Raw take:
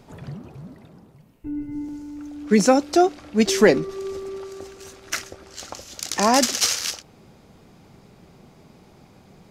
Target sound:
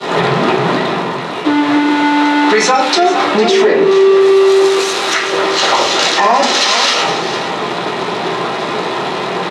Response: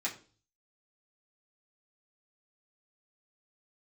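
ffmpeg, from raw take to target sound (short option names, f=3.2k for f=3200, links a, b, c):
-filter_complex "[0:a]aeval=exprs='val(0)+0.5*0.0376*sgn(val(0))':c=same,asettb=1/sr,asplit=3[a][b][c];[a]atrim=end=4.214[d];[b]atrim=start=4.21:end=5.14,asetpts=PTS-STARTPTS,afade=t=in:d=0.004:c=qsin,afade=t=out:st=0.926:d=0.004:c=qsin,aemphasis=mode=production:type=75kf[e];[c]atrim=start=5.136[f];[d][e]acrossfade=d=0.004:c1=hsin:c2=qsin[g];[g][f]acrossfade=d=0.004:c1=qsin:c2=hsin,agate=range=-33dB:threshold=-28dB:ratio=3:detection=peak,asettb=1/sr,asplit=3[h][i][j];[h]atrim=end=2.504[k];[i]atrim=start=2.5:end=3.1,asetpts=PTS-STARTPTS,afade=t=in:d=0.004:c=qsin,afade=t=out:st=0.596:d=0.004:c=qsin,tiltshelf=f=710:g=-8.5[l];[j]atrim=start=3.096[m];[k][l]acrossfade=d=0.004:c1=hsin:c2=qsin[n];[n][m]acrossfade=d=0.004:c1=qsin:c2=hsin,acompressor=threshold=-29dB:ratio=12,volume=26dB,asoftclip=hard,volume=-26dB,highpass=380,lowpass=4.2k,aecho=1:1:454:0.224[o];[1:a]atrim=start_sample=2205,asetrate=22932,aresample=44100[p];[o][p]afir=irnorm=-1:irlink=0,alimiter=level_in=21.5dB:limit=-1dB:release=50:level=0:latency=1,volume=-1dB"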